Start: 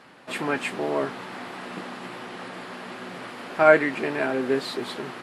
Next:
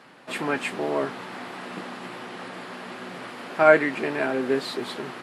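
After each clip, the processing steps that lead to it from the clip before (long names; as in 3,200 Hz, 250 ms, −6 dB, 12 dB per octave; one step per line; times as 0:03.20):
high-pass filter 87 Hz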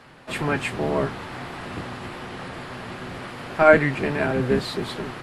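sub-octave generator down 1 octave, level +1 dB
level +1.5 dB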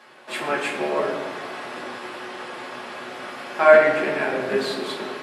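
high-pass filter 400 Hz 12 dB per octave
convolution reverb RT60 1.6 s, pre-delay 3 ms, DRR −1.5 dB
level −1.5 dB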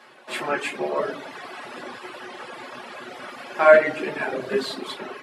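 reverb reduction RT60 1.3 s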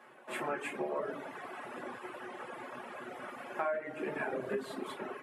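parametric band 4,500 Hz −14.5 dB 1.2 octaves
downward compressor 10 to 1, threshold −26 dBFS, peak gain reduction 18 dB
level −5.5 dB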